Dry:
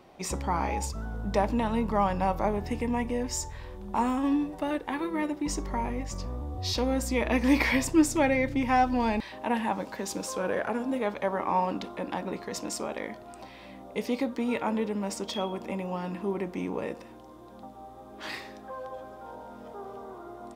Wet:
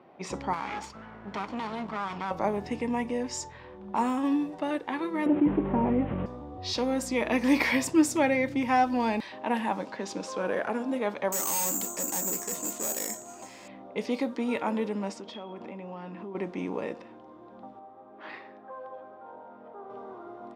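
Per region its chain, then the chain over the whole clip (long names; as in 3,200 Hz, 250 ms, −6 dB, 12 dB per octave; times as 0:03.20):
0:00.53–0:02.31: lower of the sound and its delayed copy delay 0.91 ms + low-shelf EQ 250 Hz −8 dB + downward compressor 3 to 1, threshold −29 dBFS
0:05.26–0:06.26: linear delta modulator 16 kbit/s, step −40.5 dBFS + tilt shelving filter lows +9.5 dB, about 1,100 Hz + envelope flattener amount 50%
0:11.32–0:13.68: bad sample-rate conversion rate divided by 6×, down filtered, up zero stuff + hard clipping −17.5 dBFS
0:15.10–0:16.35: downward compressor, threshold −36 dBFS + hard clipping −31.5 dBFS
0:17.79–0:19.90: low-pass filter 1,600 Hz 6 dB per octave + low-shelf EQ 350 Hz −8 dB
whole clip: high-pass filter 150 Hz 12 dB per octave; low-pass that shuts in the quiet parts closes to 2,000 Hz, open at −24 dBFS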